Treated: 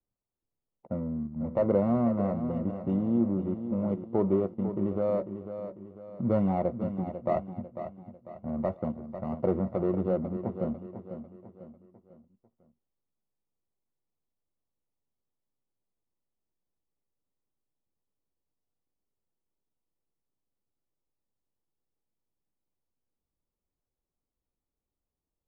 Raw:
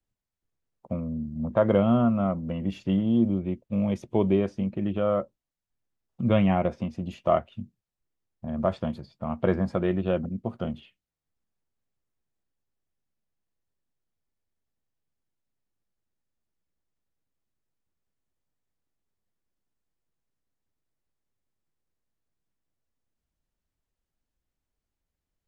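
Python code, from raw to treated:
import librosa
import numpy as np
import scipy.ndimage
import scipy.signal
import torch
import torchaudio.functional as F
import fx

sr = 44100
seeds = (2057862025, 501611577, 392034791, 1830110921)

p1 = scipy.signal.medfilt(x, 41)
p2 = scipy.signal.savgol_filter(p1, 65, 4, mode='constant')
p3 = fx.low_shelf(p2, sr, hz=250.0, db=-9.5)
p4 = fx.level_steps(p3, sr, step_db=20)
p5 = p3 + (p4 * librosa.db_to_amplitude(-0.5))
p6 = fx.notch(p5, sr, hz=660.0, q=19.0)
y = p6 + fx.echo_feedback(p6, sr, ms=497, feedback_pct=42, wet_db=-10.0, dry=0)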